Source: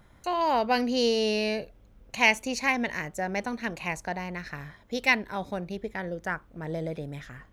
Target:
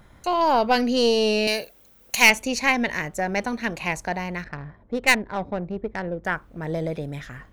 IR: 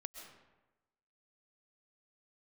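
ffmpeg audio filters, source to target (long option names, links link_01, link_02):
-filter_complex "[0:a]asettb=1/sr,asplit=3[link_01][link_02][link_03];[link_01]atrim=end=1.474[link_04];[link_02]atrim=start=1.47:end=2.3,asetpts=PTS-STARTPTS,afade=type=in:duration=0.004:curve=qsin,afade=type=out:start_time=0.826:duration=0.004:curve=qsin,aemphasis=mode=production:type=riaa[link_05];[link_03]atrim=start=2.296[link_06];[link_04][link_05]acrossfade=duration=0.004:curve1=hsin:curve2=qsin[link_07];[link_07][link_06]acrossfade=duration=0.004:curve1=qsin:curve2=hsin,aeval=exprs='0.631*(cos(1*acos(clip(val(0)/0.631,-1,1)))-cos(1*PI/2))+0.0501*(cos(5*acos(clip(val(0)/0.631,-1,1)))-cos(5*PI/2))+0.0501*(cos(6*acos(clip(val(0)/0.631,-1,1)))-cos(6*PI/2))':channel_layout=same,asettb=1/sr,asplit=3[link_08][link_09][link_10];[link_08]atrim=end=4.444[link_11];[link_09]atrim=start=4.44:end=6.25,asetpts=PTS-STARTPTS,afade=type=in:duration=0.004:curve=qsin,afade=type=out:start_time=1.806:duration=0.004:curve=qsin,adynamicsmooth=sensitivity=1.5:basefreq=1000[link_12];[link_10]atrim=start=6.246[link_13];[link_11][link_12]acrossfade=duration=0.004:curve1=hsin:curve2=qsin[link_14];[link_14][link_13]acrossfade=duration=0.004:curve1=qsin:curve2=hsin,volume=2.5dB"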